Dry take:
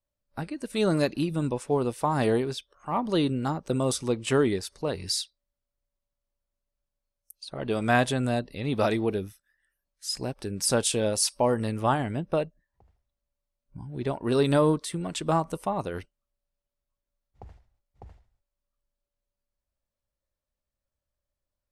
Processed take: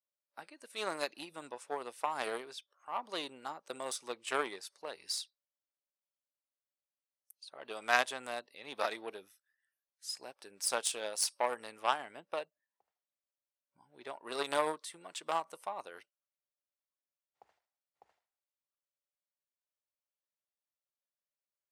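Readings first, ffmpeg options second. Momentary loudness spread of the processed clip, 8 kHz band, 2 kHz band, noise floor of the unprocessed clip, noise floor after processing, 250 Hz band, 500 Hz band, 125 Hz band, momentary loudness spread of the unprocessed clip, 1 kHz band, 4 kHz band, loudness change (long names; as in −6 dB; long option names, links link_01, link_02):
18 LU, −7.5 dB, −4.0 dB, below −85 dBFS, below −85 dBFS, −23.0 dB, −13.0 dB, −34.5 dB, 13 LU, −6.5 dB, −7.0 dB, −10.0 dB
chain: -af "aeval=exprs='0.316*(cos(1*acos(clip(val(0)/0.316,-1,1)))-cos(1*PI/2))+0.0708*(cos(3*acos(clip(val(0)/0.316,-1,1)))-cos(3*PI/2))+0.00251*(cos(6*acos(clip(val(0)/0.316,-1,1)))-cos(6*PI/2))':channel_layout=same,highpass=690"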